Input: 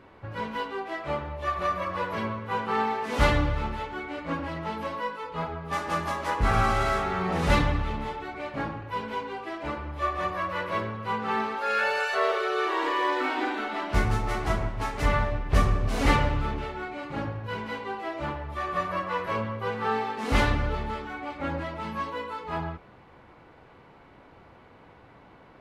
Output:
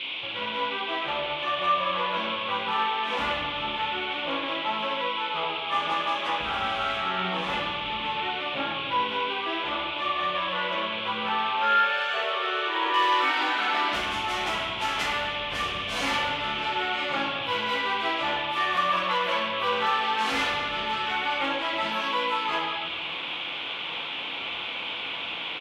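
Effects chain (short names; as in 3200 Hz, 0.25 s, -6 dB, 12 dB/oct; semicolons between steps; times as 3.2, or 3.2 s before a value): compressor 3:1, threshold -41 dBFS, peak gain reduction 19 dB; high shelf 2500 Hz -9 dB, from 12.94 s +5.5 dB; AGC gain up to 4 dB; high shelf 6800 Hz -11.5 dB; hard clip -27.5 dBFS, distortion -25 dB; reverb RT60 1.2 s, pre-delay 6 ms, DRR -2.5 dB; band noise 2200–3500 Hz -43 dBFS; HPF 1100 Hz 6 dB/oct; doubler 33 ms -12 dB; gain +9 dB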